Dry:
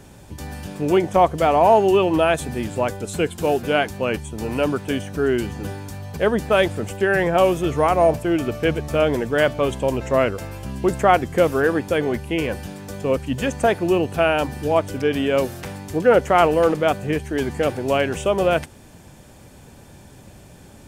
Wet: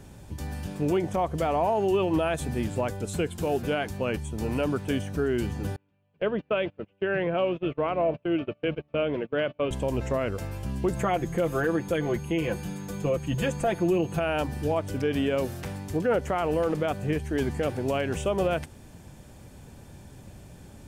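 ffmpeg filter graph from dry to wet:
ffmpeg -i in.wav -filter_complex "[0:a]asettb=1/sr,asplit=3[link_01][link_02][link_03];[link_01]atrim=end=5.764[link_04];[link_02]atrim=start=5.76:end=9.71,asetpts=PTS-STARTPTS,afade=type=in:duration=0.004:curve=qsin,afade=type=out:start_time=3.946:duration=0.004:curve=qsin,highpass=190,equalizer=frequency=240:width_type=q:width=4:gain=-5,equalizer=frequency=400:width_type=q:width=4:gain=-3,equalizer=frequency=820:width_type=q:width=4:gain=-9,equalizer=frequency=1200:width_type=q:width=4:gain=-3,equalizer=frequency=1800:width_type=q:width=4:gain=-7,equalizer=frequency=2800:width_type=q:width=4:gain=5,lowpass=frequency=2900:width=0.5412,lowpass=frequency=2900:width=1.3066,agate=range=-27dB:threshold=-29dB:ratio=16:release=100:detection=peak[link_05];[link_03]atrim=start=9.706[link_06];[link_04][link_05]acrossfade=duration=0.004:curve1=hsin:curve2=qsin[link_07];[link_07][link_06]acrossfade=duration=0.004:curve1=qsin:curve2=hsin,asettb=1/sr,asplit=3[link_08][link_09][link_10];[link_08]atrim=end=10.964[link_11];[link_09]atrim=start=10.96:end=14.2,asetpts=PTS-STARTPTS,afade=type=in:duration=0.004:curve=qsin,afade=type=out:start_time=3.236:duration=0.004:curve=qsin,equalizer=frequency=5700:width=4:gain=-5.5,aecho=1:1:5.9:0.66,atrim=end_sample=142884,aeval=exprs='val(0)+0.00398*sin(2*PI*6500*n/s)':channel_layout=same[link_12];[link_10]atrim=start=14.196[link_13];[link_11][link_12]acrossfade=duration=0.004:curve1=hsin:curve2=qsin[link_14];[link_14][link_13]acrossfade=duration=0.004:curve1=qsin:curve2=hsin,lowshelf=frequency=210:gain=6,alimiter=limit=-11dB:level=0:latency=1:release=116,volume=-5.5dB" out.wav

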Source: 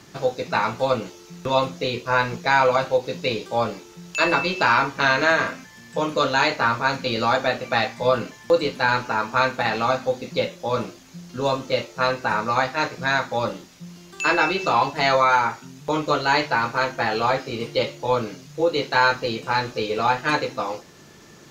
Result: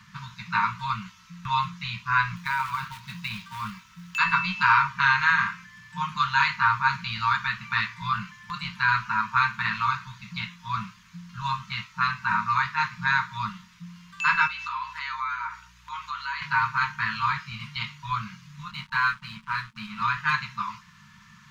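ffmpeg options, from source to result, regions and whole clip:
ffmpeg -i in.wav -filter_complex "[0:a]asettb=1/sr,asplit=3[link_01][link_02][link_03];[link_01]atrim=end=2.364[link_04];[link_02]atrim=start=2.36:end=4.18,asetpts=PTS-STARTPTS,afade=type=in:duration=0.004:curve=qsin,afade=type=out:start_time=1.816:duration=0.004:curve=qsin,acrusher=bits=3:mode=log:mix=0:aa=0.000001,acompressor=threshold=-20dB:ratio=6:attack=3.2:release=140:knee=1:detection=peak[link_05];[link_03]atrim=start=4.176[link_06];[link_04][link_05]acrossfade=duration=0.004:curve1=hsin:curve2=qsin[link_07];[link_07][link_06]acrossfade=duration=0.004:curve1=qsin:curve2=hsin,asettb=1/sr,asplit=3[link_08][link_09][link_10];[link_08]atrim=end=14.474[link_11];[link_09]atrim=start=14.47:end=16.42,asetpts=PTS-STARTPTS,afade=type=in:duration=0.004:curve=qsin,afade=type=out:start_time=1.946:duration=0.004:curve=qsin,highpass=730,acompressor=threshold=-30dB:ratio=2.5:attack=3.2:release=140:knee=1:detection=peak,aeval=exprs='val(0)+0.00224*(sin(2*PI*60*n/s)+sin(2*PI*2*60*n/s)/2+sin(2*PI*3*60*n/s)/3+sin(2*PI*4*60*n/s)/4+sin(2*PI*5*60*n/s)/5)':channel_layout=same[link_12];[link_10]atrim=start=16.416[link_13];[link_11][link_12]acrossfade=duration=0.004:curve1=hsin:curve2=qsin[link_14];[link_14][link_13]acrossfade=duration=0.004:curve1=qsin:curve2=hsin,asettb=1/sr,asplit=3[link_15][link_16][link_17];[link_15]atrim=end=18.714[link_18];[link_16]atrim=start=18.71:end=20.02,asetpts=PTS-STARTPTS,afade=type=in:duration=0.004:curve=qsin,afade=type=out:start_time=1.306:duration=0.004:curve=qsin,highpass=frequency=150:width=0.5412,highpass=frequency=150:width=1.3066,aeval=exprs='sgn(val(0))*max(abs(val(0))-0.0141,0)':channel_layout=same,tiltshelf=frequency=700:gain=4[link_19];[link_17]atrim=start=20.016[link_20];[link_18][link_19]acrossfade=duration=0.004:curve1=hsin:curve2=qsin[link_21];[link_21][link_20]acrossfade=duration=0.004:curve1=qsin:curve2=hsin,afftfilt=real='re*(1-between(b*sr/4096,220,910))':imag='im*(1-between(b*sr/4096,220,910))':win_size=4096:overlap=0.75,bass=frequency=250:gain=-3,treble=frequency=4000:gain=-12" out.wav

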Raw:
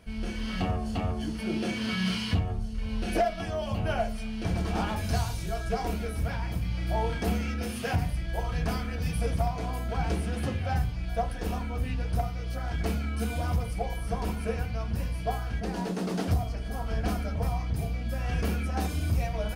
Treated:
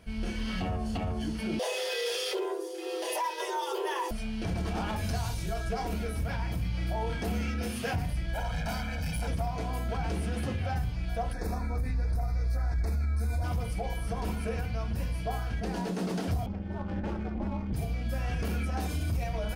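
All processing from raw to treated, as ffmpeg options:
ffmpeg -i in.wav -filter_complex "[0:a]asettb=1/sr,asplit=3[link_01][link_02][link_03];[link_01]atrim=end=1.594[link_04];[link_02]atrim=start=1.59:end=4.11,asetpts=PTS-STARTPTS,afade=type=in:duration=0.004:curve=qsin,afade=type=out:start_time=2.516:duration=0.004:curve=qsin,highpass=82,aemphasis=mode=production:type=50kf,afreqshift=290[link_05];[link_03]atrim=start=4.106[link_06];[link_04][link_05]acrossfade=duration=0.004:curve1=hsin:curve2=qsin[link_07];[link_07][link_06]acrossfade=duration=0.004:curve1=qsin:curve2=hsin,asettb=1/sr,asplit=3[link_08][link_09][link_10];[link_08]atrim=end=8.344[link_11];[link_09]atrim=start=8.34:end=9.28,asetpts=PTS-STARTPTS,afade=type=in:duration=0.004:curve=qsin,afade=type=out:start_time=0.936:duration=0.004:curve=qsin,equalizer=frequency=75:width_type=o:width=2.3:gain=-5.5,volume=33dB,asoftclip=hard,volume=-33dB,aecho=1:1:1.3:0.85,atrim=end_sample=41454[link_12];[link_10]atrim=start=9.276[link_13];[link_11][link_12]acrossfade=duration=0.004:curve1=hsin:curve2=qsin[link_14];[link_14][link_13]acrossfade=duration=0.004:curve1=qsin:curve2=hsin,asettb=1/sr,asplit=3[link_15][link_16][link_17];[link_15]atrim=end=11.334[link_18];[link_16]atrim=start=11.33:end=13.44,asetpts=PTS-STARTPTS,afade=type=in:duration=0.004:curve=qsin,afade=type=out:start_time=2.106:duration=0.004:curve=qsin,asubboost=boost=8:cutoff=92,asuperstop=centerf=3000:order=4:qfactor=2[link_19];[link_17]atrim=start=13.436[link_20];[link_18][link_19]acrossfade=duration=0.004:curve1=hsin:curve2=qsin[link_21];[link_21][link_20]acrossfade=duration=0.004:curve1=qsin:curve2=hsin,asettb=1/sr,asplit=3[link_22][link_23][link_24];[link_22]atrim=end=16.464[link_25];[link_23]atrim=start=16.46:end=17.73,asetpts=PTS-STARTPTS,afade=type=in:duration=0.004:curve=qsin,afade=type=out:start_time=1.266:duration=0.004:curve=qsin,adynamicsmooth=sensitivity=6:basefreq=1400,aeval=exprs='val(0)*sin(2*PI*140*n/s)':channel_layout=same[link_26];[link_24]atrim=start=17.726[link_27];[link_25][link_26]acrossfade=duration=0.004:curve1=hsin:curve2=qsin[link_28];[link_28][link_27]acrossfade=duration=0.004:curve1=qsin:curve2=hsin,alimiter=limit=-23.5dB:level=0:latency=1:release=36,bandreject=frequency=1200:width=30" out.wav

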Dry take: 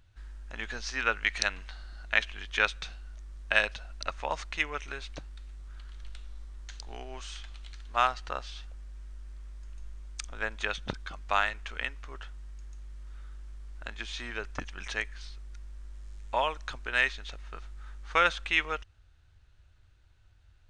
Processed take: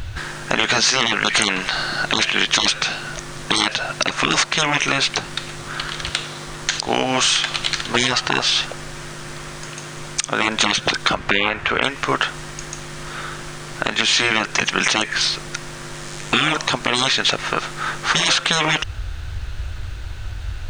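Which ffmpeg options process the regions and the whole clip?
ffmpeg -i in.wav -filter_complex "[0:a]asettb=1/sr,asplit=3[link_01][link_02][link_03];[link_01]atrim=end=11.134[link_04];[link_02]atrim=start=11.13:end=11.82,asetpts=PTS-STARTPTS,afade=type=in:duration=0.004:curve=qsin,afade=type=out:start_time=0.686:duration=0.004:curve=qsin,acrossover=split=3000[link_05][link_06];[link_06]acompressor=threshold=-49dB:ratio=4:attack=1:release=60[link_07];[link_05][link_07]amix=inputs=2:normalize=0,bass=frequency=250:gain=-2,treble=frequency=4000:gain=-12[link_08];[link_03]atrim=start=11.816[link_09];[link_04][link_08]acrossfade=duration=0.004:curve1=hsin:curve2=qsin[link_10];[link_10][link_09]acrossfade=duration=0.004:curve1=qsin:curve2=hsin,afftfilt=real='re*lt(hypot(re,im),0.0355)':imag='im*lt(hypot(re,im),0.0355)':win_size=1024:overlap=0.75,acompressor=threshold=-46dB:ratio=6,alimiter=level_in=33.5dB:limit=-1dB:release=50:level=0:latency=1,volume=-1dB" out.wav

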